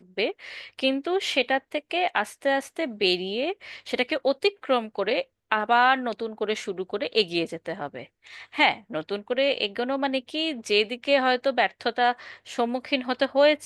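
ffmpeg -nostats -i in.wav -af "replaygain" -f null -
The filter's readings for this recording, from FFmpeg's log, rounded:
track_gain = +3.5 dB
track_peak = 0.437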